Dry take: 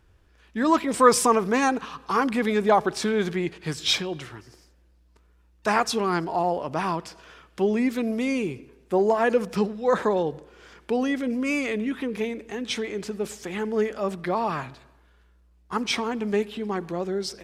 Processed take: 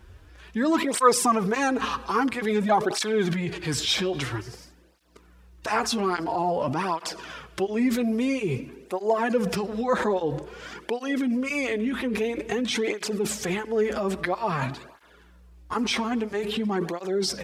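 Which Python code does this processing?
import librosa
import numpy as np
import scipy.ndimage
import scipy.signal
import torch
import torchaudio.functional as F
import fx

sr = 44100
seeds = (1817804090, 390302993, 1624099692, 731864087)

p1 = fx.over_compress(x, sr, threshold_db=-35.0, ratio=-1.0)
p2 = x + (p1 * librosa.db_to_amplitude(1.5))
y = fx.flanger_cancel(p2, sr, hz=0.5, depth_ms=7.1)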